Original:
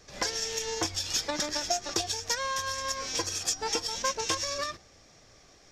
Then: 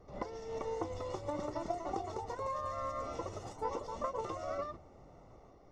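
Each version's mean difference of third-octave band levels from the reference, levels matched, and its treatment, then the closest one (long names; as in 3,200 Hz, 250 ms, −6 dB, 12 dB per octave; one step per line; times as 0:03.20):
10.0 dB: downward compressor, threshold −33 dBFS, peak gain reduction 9.5 dB
delay with pitch and tempo change per echo 417 ms, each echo +2 semitones, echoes 2
Savitzky-Golay smoothing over 65 samples
level +1 dB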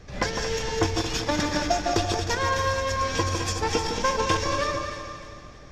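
7.0 dB: feedback delay that plays each chunk backwards 114 ms, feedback 65%, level −7 dB
bass and treble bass +9 dB, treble −12 dB
delay that swaps between a low-pass and a high-pass 155 ms, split 1,500 Hz, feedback 62%, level −6 dB
level +6 dB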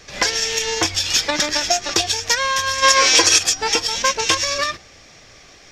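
3.0 dB: gain on a spectral selection 0:02.83–0:03.38, 260–12,000 Hz +11 dB
parametric band 2,500 Hz +7.5 dB 1.5 octaves
boost into a limiter +10 dB
level −1 dB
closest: third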